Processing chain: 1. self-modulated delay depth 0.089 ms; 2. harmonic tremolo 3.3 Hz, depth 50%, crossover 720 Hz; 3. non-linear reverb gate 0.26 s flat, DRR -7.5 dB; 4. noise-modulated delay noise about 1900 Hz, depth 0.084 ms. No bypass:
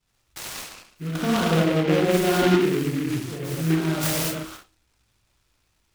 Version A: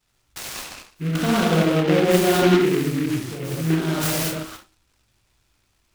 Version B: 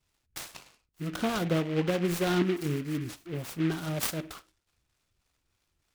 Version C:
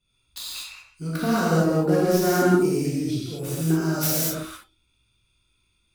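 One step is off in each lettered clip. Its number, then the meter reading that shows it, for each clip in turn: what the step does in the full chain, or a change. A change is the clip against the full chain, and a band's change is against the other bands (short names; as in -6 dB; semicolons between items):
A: 2, loudness change +2.0 LU; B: 3, momentary loudness spread change -1 LU; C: 4, 4 kHz band -3.0 dB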